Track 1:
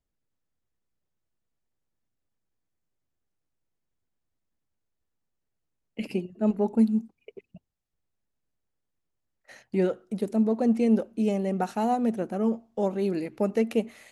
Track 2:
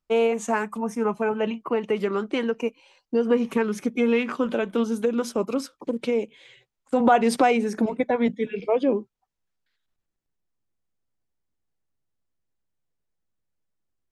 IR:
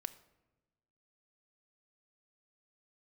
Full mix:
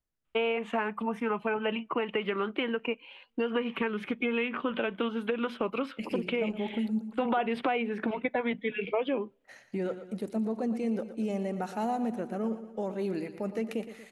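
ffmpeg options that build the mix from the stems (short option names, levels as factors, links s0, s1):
-filter_complex "[0:a]alimiter=limit=0.106:level=0:latency=1:release=20,volume=0.562,asplit=2[s0][s1];[s1]volume=0.251[s2];[1:a]highshelf=f=4400:t=q:w=3:g=-13,acrossover=split=770|3400[s3][s4][s5];[s3]acompressor=threshold=0.0316:ratio=4[s6];[s4]acompressor=threshold=0.0158:ratio=4[s7];[s5]acompressor=threshold=0.00158:ratio=4[s8];[s6][s7][s8]amix=inputs=3:normalize=0,adelay=250,volume=0.891,asplit=2[s9][s10];[s10]volume=0.0891[s11];[2:a]atrim=start_sample=2205[s12];[s11][s12]afir=irnorm=-1:irlink=0[s13];[s2]aecho=0:1:117|234|351|468|585|702|819:1|0.49|0.24|0.118|0.0576|0.0282|0.0138[s14];[s0][s9][s13][s14]amix=inputs=4:normalize=0,equalizer=f=1600:t=o:w=1.7:g=3.5"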